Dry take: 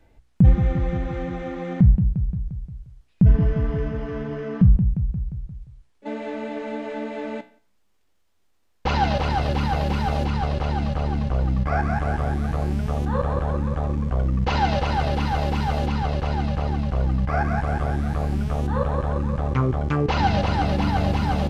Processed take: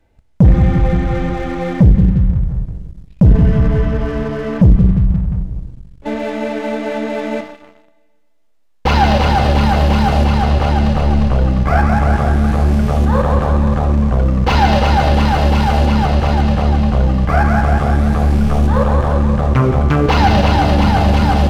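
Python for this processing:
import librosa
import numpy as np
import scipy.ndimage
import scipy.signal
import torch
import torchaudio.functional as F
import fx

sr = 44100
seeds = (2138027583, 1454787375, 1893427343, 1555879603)

y = fx.rev_schroeder(x, sr, rt60_s=1.7, comb_ms=29, drr_db=6.0)
y = fx.leveller(y, sr, passes=2)
y = F.gain(torch.from_numpy(y), 2.0).numpy()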